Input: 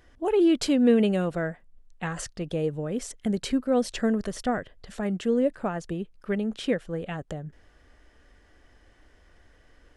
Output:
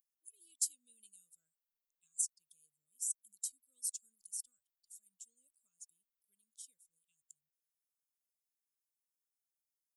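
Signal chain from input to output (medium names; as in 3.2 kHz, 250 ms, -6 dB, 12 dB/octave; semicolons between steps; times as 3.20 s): expander on every frequency bin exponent 1.5; inverse Chebyshev high-pass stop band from 2 kHz, stop band 70 dB; trim +10 dB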